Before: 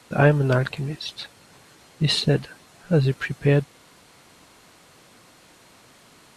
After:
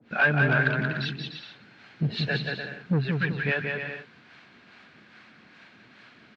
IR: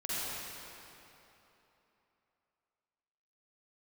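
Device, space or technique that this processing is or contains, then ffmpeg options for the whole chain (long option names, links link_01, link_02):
guitar amplifier with harmonic tremolo: -filter_complex "[0:a]acrossover=split=550[link_01][link_02];[link_01]aeval=exprs='val(0)*(1-1/2+1/2*cos(2*PI*2.4*n/s))':channel_layout=same[link_03];[link_02]aeval=exprs='val(0)*(1-1/2-1/2*cos(2*PI*2.4*n/s))':channel_layout=same[link_04];[link_03][link_04]amix=inputs=2:normalize=0,asoftclip=type=tanh:threshold=-19.5dB,highpass=93,equalizer=frequency=220:width_type=q:width=4:gain=8,equalizer=frequency=520:width_type=q:width=4:gain=-4,equalizer=frequency=1000:width_type=q:width=4:gain=-4,equalizer=frequency=1600:width_type=q:width=4:gain=10,equalizer=frequency=2400:width_type=q:width=4:gain=6,lowpass=frequency=4300:width=0.5412,lowpass=frequency=4300:width=1.3066,aecho=1:1:180|297|373|422.5|454.6:0.631|0.398|0.251|0.158|0.1"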